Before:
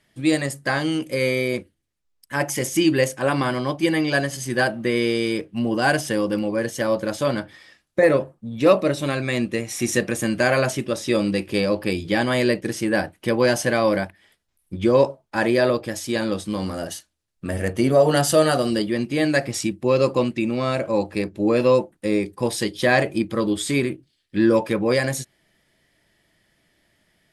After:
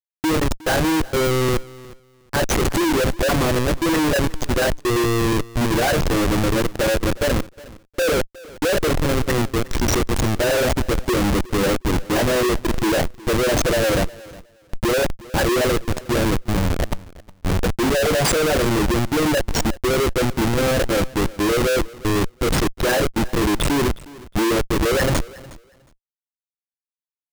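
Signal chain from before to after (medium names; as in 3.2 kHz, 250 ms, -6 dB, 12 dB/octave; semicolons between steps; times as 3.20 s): resonances exaggerated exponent 3; Schmitt trigger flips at -23.5 dBFS; waveshaping leveller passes 3; on a send: feedback delay 362 ms, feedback 18%, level -20.5 dB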